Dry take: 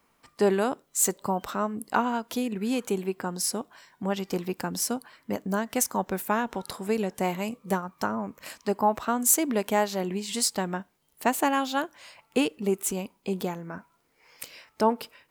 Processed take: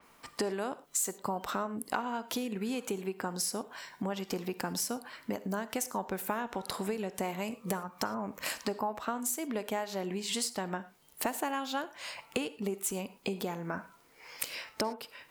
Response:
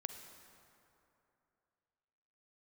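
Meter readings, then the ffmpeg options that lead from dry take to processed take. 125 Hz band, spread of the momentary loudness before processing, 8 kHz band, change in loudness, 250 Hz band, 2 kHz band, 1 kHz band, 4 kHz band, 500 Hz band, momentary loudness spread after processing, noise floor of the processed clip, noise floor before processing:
-6.5 dB, 10 LU, -7.5 dB, -7.5 dB, -7.5 dB, -5.5 dB, -7.5 dB, -3.0 dB, -8.0 dB, 6 LU, -61 dBFS, -69 dBFS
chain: -filter_complex "[0:a]acompressor=threshold=-37dB:ratio=10,asplit=2[a][b];[1:a]atrim=start_sample=2205,afade=t=out:st=0.17:d=0.01,atrim=end_sample=7938,lowshelf=f=240:g=-10[c];[b][c]afir=irnorm=-1:irlink=0,volume=6dB[d];[a][d]amix=inputs=2:normalize=0,adynamicequalizer=threshold=0.00316:dfrequency=4800:dqfactor=0.7:tfrequency=4800:tqfactor=0.7:attack=5:release=100:ratio=0.375:range=1.5:mode=cutabove:tftype=highshelf"

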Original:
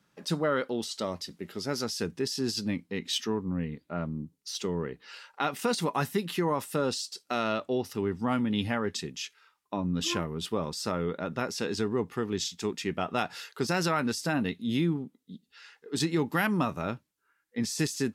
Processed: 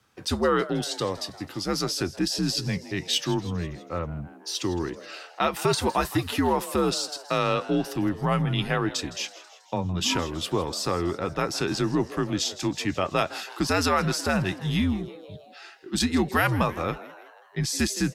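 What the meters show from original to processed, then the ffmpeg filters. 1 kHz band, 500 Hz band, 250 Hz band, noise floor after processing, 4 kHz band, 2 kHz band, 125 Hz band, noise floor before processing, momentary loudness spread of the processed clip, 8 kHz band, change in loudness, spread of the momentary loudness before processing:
+5.5 dB, +3.5 dB, +3.5 dB, -50 dBFS, +5.5 dB, +4.5 dB, +5.5 dB, -74 dBFS, 10 LU, +5.5 dB, +4.5 dB, 9 LU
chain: -filter_complex "[0:a]highpass=220,afreqshift=-83,asplit=2[a][b];[b]asplit=5[c][d][e][f][g];[c]adelay=162,afreqshift=120,volume=-17dB[h];[d]adelay=324,afreqshift=240,volume=-21.7dB[i];[e]adelay=486,afreqshift=360,volume=-26.5dB[j];[f]adelay=648,afreqshift=480,volume=-31.2dB[k];[g]adelay=810,afreqshift=600,volume=-35.9dB[l];[h][i][j][k][l]amix=inputs=5:normalize=0[m];[a][m]amix=inputs=2:normalize=0,volume=5.5dB"

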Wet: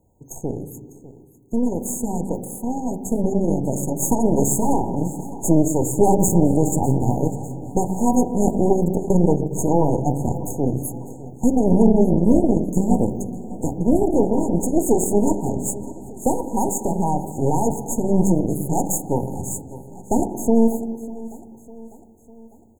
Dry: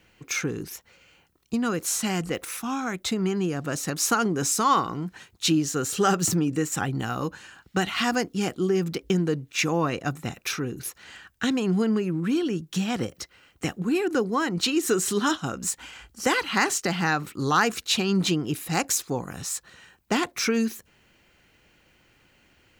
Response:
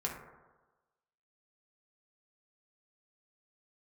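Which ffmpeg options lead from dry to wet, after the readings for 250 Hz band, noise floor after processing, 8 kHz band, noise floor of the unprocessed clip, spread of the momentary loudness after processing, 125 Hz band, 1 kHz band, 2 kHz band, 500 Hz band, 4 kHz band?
+7.5 dB, -47 dBFS, +1.5 dB, -62 dBFS, 13 LU, +8.0 dB, +2.5 dB, under -40 dB, +7.5 dB, under -40 dB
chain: -filter_complex "[0:a]asplit=2[a][b];[b]lowshelf=f=390:g=10[c];[1:a]atrim=start_sample=2205,asetrate=24255,aresample=44100,lowpass=4.6k[d];[c][d]afir=irnorm=-1:irlink=0,volume=-14dB[e];[a][e]amix=inputs=2:normalize=0,aeval=exprs='0.473*(cos(1*acos(clip(val(0)/0.473,-1,1)))-cos(1*PI/2))+0.0841*(cos(6*acos(clip(val(0)/0.473,-1,1)))-cos(6*PI/2))':c=same,dynaudnorm=f=650:g=9:m=11.5dB,aecho=1:1:600|1200|1800|2400:0.126|0.0667|0.0354|0.0187,afftfilt=real='re*(1-between(b*sr/4096,970,6400))':imag='im*(1-between(b*sr/4096,970,6400))':win_size=4096:overlap=0.75,volume=-2.5dB"

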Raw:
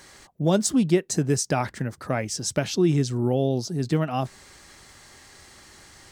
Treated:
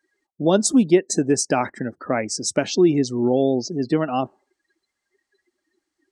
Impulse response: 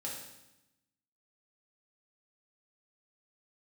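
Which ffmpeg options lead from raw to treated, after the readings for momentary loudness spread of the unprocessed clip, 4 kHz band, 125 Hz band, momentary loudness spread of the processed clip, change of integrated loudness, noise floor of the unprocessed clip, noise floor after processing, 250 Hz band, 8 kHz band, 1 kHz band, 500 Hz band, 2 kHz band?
8 LU, +3.0 dB, -4.5 dB, 9 LU, +4.0 dB, -51 dBFS, -81 dBFS, +4.5 dB, +3.5 dB, +4.5 dB, +5.5 dB, +3.5 dB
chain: -af "lowshelf=f=190:t=q:w=1.5:g=-8,afftdn=nr=36:nf=-39,volume=4dB"

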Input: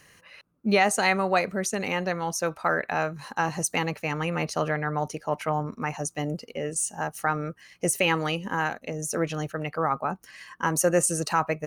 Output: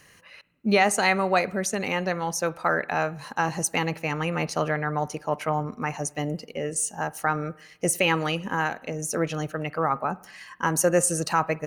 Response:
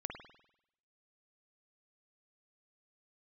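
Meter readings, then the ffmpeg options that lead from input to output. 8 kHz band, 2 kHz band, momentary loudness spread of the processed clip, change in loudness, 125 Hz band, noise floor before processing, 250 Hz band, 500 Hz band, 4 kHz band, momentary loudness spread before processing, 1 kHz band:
+1.0 dB, +1.0 dB, 9 LU, +1.0 dB, +1.0 dB, -60 dBFS, +1.0 dB, +1.0 dB, +1.0 dB, 9 LU, +1.0 dB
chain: -filter_complex "[0:a]asplit=2[a][b];[1:a]atrim=start_sample=2205[c];[b][c]afir=irnorm=-1:irlink=0,volume=-15dB[d];[a][d]amix=inputs=2:normalize=0"

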